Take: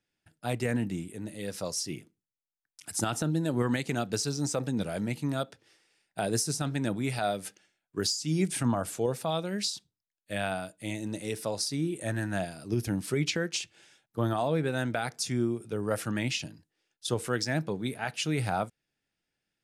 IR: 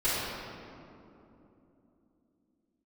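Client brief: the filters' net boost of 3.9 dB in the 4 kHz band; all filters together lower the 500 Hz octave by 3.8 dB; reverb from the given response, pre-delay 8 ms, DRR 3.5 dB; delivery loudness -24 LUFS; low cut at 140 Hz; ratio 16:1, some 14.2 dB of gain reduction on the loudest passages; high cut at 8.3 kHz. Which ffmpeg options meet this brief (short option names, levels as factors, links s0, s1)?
-filter_complex "[0:a]highpass=140,lowpass=8300,equalizer=f=500:t=o:g=-5,equalizer=f=4000:t=o:g=5.5,acompressor=threshold=0.0126:ratio=16,asplit=2[s0][s1];[1:a]atrim=start_sample=2205,adelay=8[s2];[s1][s2]afir=irnorm=-1:irlink=0,volume=0.168[s3];[s0][s3]amix=inputs=2:normalize=0,volume=7.5"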